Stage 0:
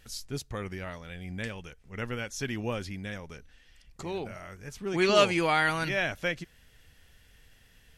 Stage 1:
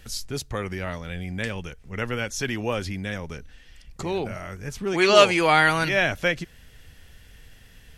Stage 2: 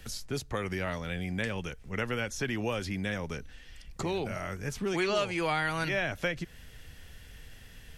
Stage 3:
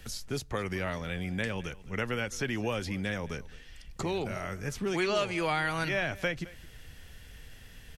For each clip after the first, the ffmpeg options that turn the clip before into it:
-filter_complex "[0:a]lowshelf=f=360:g=3.5,acrossover=split=380[a][b];[a]alimiter=level_in=9dB:limit=-24dB:level=0:latency=1,volume=-9dB[c];[c][b]amix=inputs=2:normalize=0,volume=7dB"
-filter_complex "[0:a]acrossover=split=130|2300[a][b][c];[a]acompressor=threshold=-42dB:ratio=4[d];[b]acompressor=threshold=-30dB:ratio=4[e];[c]acompressor=threshold=-40dB:ratio=4[f];[d][e][f]amix=inputs=3:normalize=0"
-af "aecho=1:1:215:0.1"

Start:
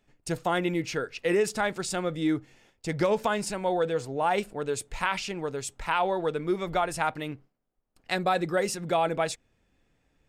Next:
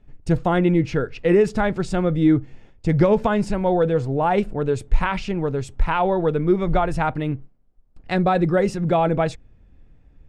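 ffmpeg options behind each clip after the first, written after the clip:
-af "aemphasis=mode=reproduction:type=riaa,volume=4.5dB"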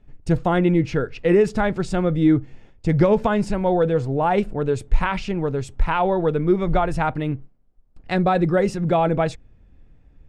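-af anull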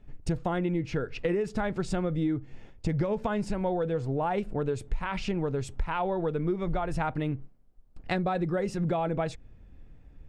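-af "acompressor=threshold=-26dB:ratio=6"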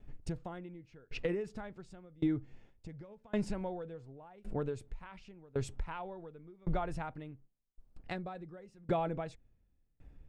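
-af "aeval=exprs='val(0)*pow(10,-29*if(lt(mod(0.9*n/s,1),2*abs(0.9)/1000),1-mod(0.9*n/s,1)/(2*abs(0.9)/1000),(mod(0.9*n/s,1)-2*abs(0.9)/1000)/(1-2*abs(0.9)/1000))/20)':c=same,volume=-1.5dB"

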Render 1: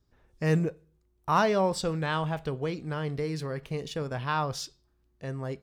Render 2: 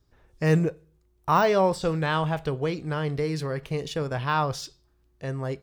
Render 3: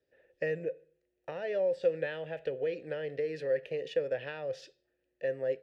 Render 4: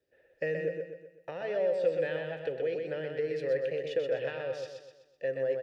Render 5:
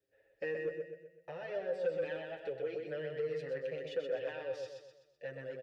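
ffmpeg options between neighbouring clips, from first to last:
-af "deesser=0.9,equalizer=f=220:t=o:w=0.32:g=-6.5,volume=4.5dB"
-filter_complex "[0:a]acrossover=split=130[a][b];[b]acompressor=threshold=-27dB:ratio=10[c];[a][c]amix=inputs=2:normalize=0,asplit=3[d][e][f];[d]bandpass=f=530:t=q:w=8,volume=0dB[g];[e]bandpass=f=1.84k:t=q:w=8,volume=-6dB[h];[f]bandpass=f=2.48k:t=q:w=8,volume=-9dB[i];[g][h][i]amix=inputs=3:normalize=0,volume=8dB"
-af "aecho=1:1:126|252|378|504|630|756:0.596|0.268|0.121|0.0543|0.0244|0.011"
-filter_complex "[0:a]asoftclip=type=tanh:threshold=-23.5dB,asplit=2[a][b];[b]adelay=7.2,afreqshift=0.45[c];[a][c]amix=inputs=2:normalize=1,volume=-2dB"

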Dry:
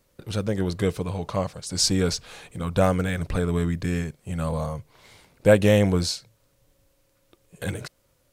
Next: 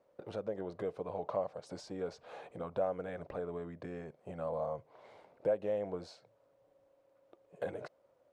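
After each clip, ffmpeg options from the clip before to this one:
-af "acompressor=threshold=-31dB:ratio=5,bandpass=f=630:t=q:w=2:csg=0,volume=4dB"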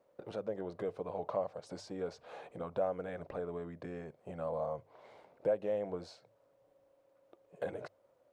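-af "bandreject=f=50:t=h:w=6,bandreject=f=100:t=h:w=6"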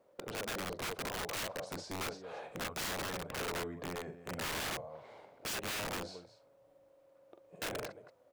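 -af "aecho=1:1:44|223:0.447|0.2,aeval=exprs='(mod(59.6*val(0)+1,2)-1)/59.6':c=same,volume=2.5dB"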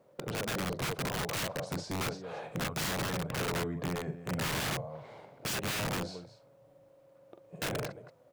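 -af "equalizer=f=140:t=o:w=0.96:g=11.5,volume=3.5dB"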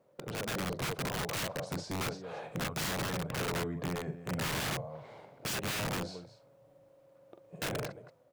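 -af "dynaudnorm=f=140:g=5:m=3.5dB,volume=-4.5dB"

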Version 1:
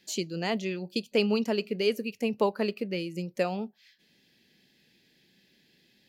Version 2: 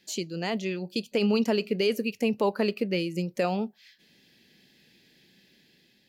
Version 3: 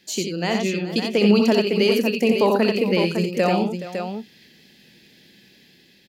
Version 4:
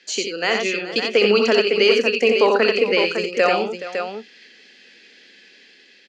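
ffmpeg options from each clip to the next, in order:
-af "alimiter=limit=-20dB:level=0:latency=1:release=30,dynaudnorm=f=350:g=5:m=4.5dB"
-af "aecho=1:1:63|88|422|556:0.398|0.562|0.188|0.422,volume=6dB"
-af "highpass=f=330:w=0.5412,highpass=f=330:w=1.3066,equalizer=f=340:t=q:w=4:g=-9,equalizer=f=630:t=q:w=4:g=-7,equalizer=f=900:t=q:w=4:g=-8,equalizer=f=1.4k:t=q:w=4:g=4,equalizer=f=3.7k:t=q:w=4:g=-6,equalizer=f=5.3k:t=q:w=4:g=-4,lowpass=f=6.2k:w=0.5412,lowpass=f=6.2k:w=1.3066,volume=7.5dB"

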